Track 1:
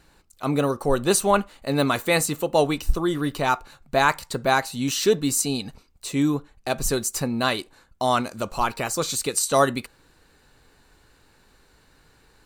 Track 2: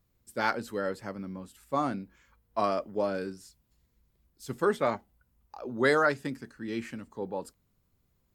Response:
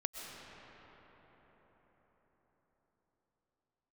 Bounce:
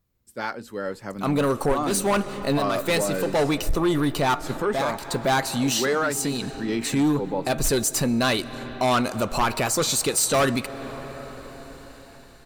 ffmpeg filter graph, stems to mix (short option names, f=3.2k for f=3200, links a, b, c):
-filter_complex "[0:a]asoftclip=type=hard:threshold=-18.5dB,adelay=800,volume=-1.5dB,asplit=2[a][b];[b]volume=-16dB[c];[1:a]volume=-1dB,asplit=2[d][e];[e]apad=whole_len=584754[f];[a][f]sidechaincompress=threshold=-34dB:ratio=4:attack=16:release=883[g];[2:a]atrim=start_sample=2205[h];[c][h]afir=irnorm=-1:irlink=0[i];[g][d][i]amix=inputs=3:normalize=0,dynaudnorm=f=150:g=17:m=12.5dB,asoftclip=type=tanh:threshold=-6.5dB,alimiter=limit=-16dB:level=0:latency=1:release=277"